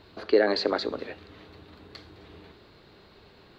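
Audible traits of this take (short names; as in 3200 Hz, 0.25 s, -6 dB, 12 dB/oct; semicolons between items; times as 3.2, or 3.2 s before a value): noise floor -55 dBFS; spectral tilt -2.0 dB/oct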